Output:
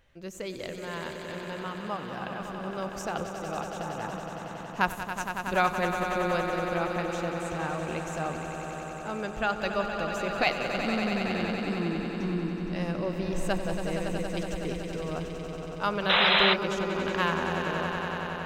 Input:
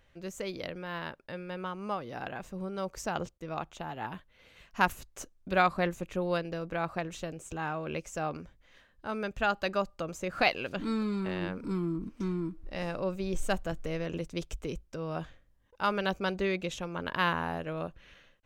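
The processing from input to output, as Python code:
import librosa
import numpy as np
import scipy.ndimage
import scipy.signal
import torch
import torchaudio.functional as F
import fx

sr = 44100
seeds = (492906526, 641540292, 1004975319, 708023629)

y = fx.echo_swell(x, sr, ms=93, loudest=5, wet_db=-9.5)
y = fx.spec_paint(y, sr, seeds[0], shape='noise', start_s=16.09, length_s=0.45, low_hz=490.0, high_hz=4100.0, level_db=-22.0)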